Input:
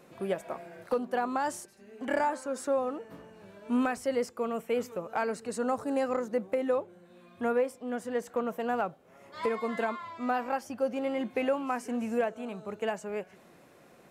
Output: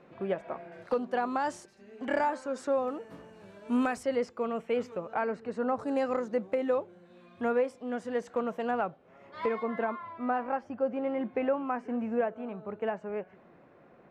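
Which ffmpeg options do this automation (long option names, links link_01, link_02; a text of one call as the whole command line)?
ffmpeg -i in.wav -af "asetnsamples=nb_out_samples=441:pad=0,asendcmd='0.72 lowpass f 5500;2.88 lowpass f 10000;4.03 lowpass f 4200;5.14 lowpass f 2300;5.79 lowpass f 5500;8.71 lowpass f 3200;9.63 lowpass f 1800',lowpass=2700" out.wav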